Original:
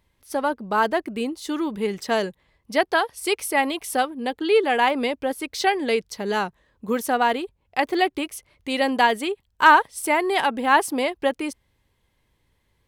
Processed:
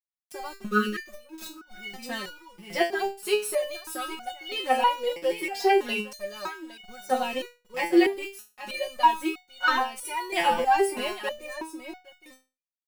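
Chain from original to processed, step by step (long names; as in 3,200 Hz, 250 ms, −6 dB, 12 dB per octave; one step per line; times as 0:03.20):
centre clipping without the shift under −32.5 dBFS
0:00.67–0:01.06: time-frequency box erased 540–1,100 Hz
0:10.45–0:11.20: low-shelf EQ 400 Hz +10 dB
soft clipping −7 dBFS, distortion −20 dB
comb filter 5.5 ms, depth 98%
single-tap delay 812 ms −10.5 dB
0:01.11–0:01.71: compressor whose output falls as the input rises −39 dBFS, ratio −1
step-sequenced resonator 3.1 Hz 170–740 Hz
level +7 dB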